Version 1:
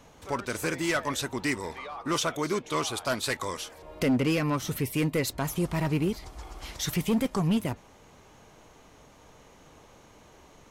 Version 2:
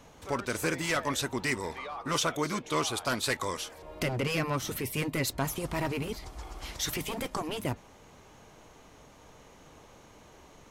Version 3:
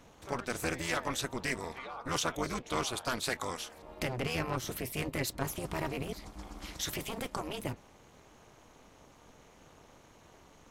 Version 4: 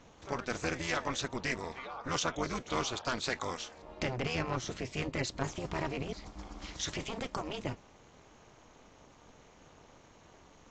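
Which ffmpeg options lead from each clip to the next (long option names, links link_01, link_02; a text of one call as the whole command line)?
ffmpeg -i in.wav -af "afftfilt=real='re*lt(hypot(re,im),0.355)':imag='im*lt(hypot(re,im),0.355)':win_size=1024:overlap=0.75" out.wav
ffmpeg -i in.wav -af "tremolo=f=250:d=0.889" out.wav
ffmpeg -i in.wav -ar 16000 -c:a aac -b:a 48k out.aac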